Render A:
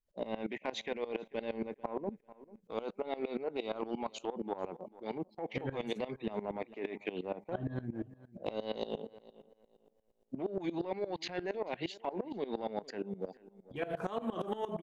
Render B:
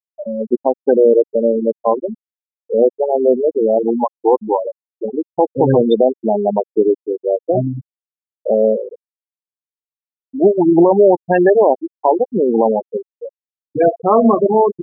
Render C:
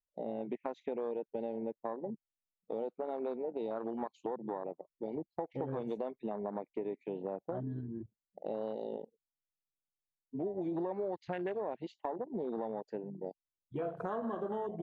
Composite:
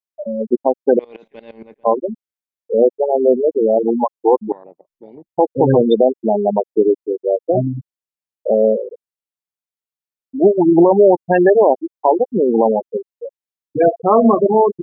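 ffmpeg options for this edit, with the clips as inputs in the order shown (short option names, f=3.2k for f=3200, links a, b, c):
-filter_complex "[1:a]asplit=3[a][b][c];[a]atrim=end=0.992[d];[0:a]atrim=start=0.988:end=1.842[e];[b]atrim=start=1.838:end=4.522[f];[2:a]atrim=start=4.518:end=5.292[g];[c]atrim=start=5.288[h];[d][e]acrossfade=d=0.004:c1=hsin:c2=hsin[i];[i][f]acrossfade=d=0.004:c1=hsin:c2=hsin[j];[j][g]acrossfade=d=0.004:c1=hsin:c2=hsin[k];[k][h]acrossfade=d=0.004:c1=hsin:c2=hsin"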